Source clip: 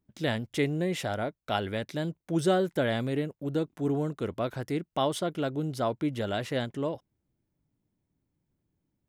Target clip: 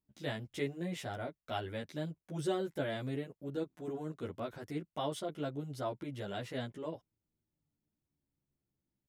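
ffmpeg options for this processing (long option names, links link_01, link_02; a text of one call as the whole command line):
ffmpeg -i in.wav -filter_complex "[0:a]asplit=2[link_01][link_02];[link_02]adelay=11.4,afreqshift=-0.36[link_03];[link_01][link_03]amix=inputs=2:normalize=1,volume=-6dB" out.wav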